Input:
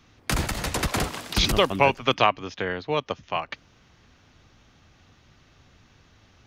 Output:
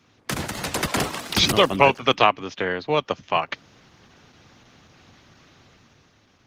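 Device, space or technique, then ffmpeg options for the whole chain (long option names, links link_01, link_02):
video call: -af "highpass=120,dynaudnorm=framelen=260:gausssize=7:maxgain=7.5dB" -ar 48000 -c:a libopus -b:a 16k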